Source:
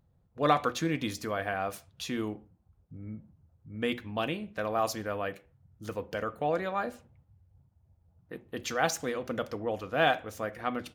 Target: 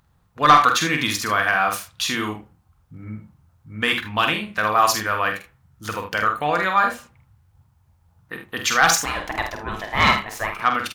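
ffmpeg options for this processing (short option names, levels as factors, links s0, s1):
-filter_complex "[0:a]lowshelf=f=790:t=q:w=1.5:g=-9.5,asettb=1/sr,asplit=3[s0][s1][s2];[s0]atrim=end=9.054[s3];[s1]atrim=start=9.05:end=10.62,asetpts=PTS-STARTPTS,afade=t=in:d=0.004:c=qsin,afade=t=out:st=1.566:d=0.004:c=qsin,aeval=exprs='val(0)*sin(2*PI*550*n/s)':c=same[s4];[s2]atrim=start=10.616[s5];[s3][s4]acrossfade=d=0.004:c1=hsin:c2=qsin[s6];[s6][s5]acrossfade=d=0.004:c1=qsin:c2=hsin,asplit=2[s7][s8];[s8]aeval=exprs='0.237*sin(PI/2*2*val(0)/0.237)':c=same,volume=0.631[s9];[s7][s9]amix=inputs=2:normalize=0,aecho=1:1:47|77:0.501|0.282,volume=1.78"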